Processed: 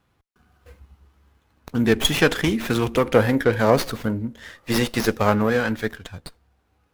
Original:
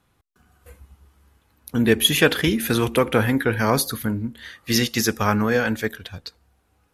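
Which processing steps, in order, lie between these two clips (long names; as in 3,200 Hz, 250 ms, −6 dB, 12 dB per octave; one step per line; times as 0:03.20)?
0:03.14–0:05.50: parametric band 560 Hz +8 dB 0.75 octaves
windowed peak hold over 5 samples
level −1 dB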